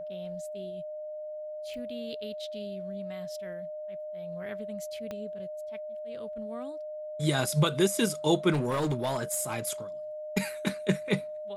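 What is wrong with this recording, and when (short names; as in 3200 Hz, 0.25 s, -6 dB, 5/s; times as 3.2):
tone 610 Hz -36 dBFS
1.74 pop
5.11 pop -24 dBFS
8.52–9.72 clipped -24.5 dBFS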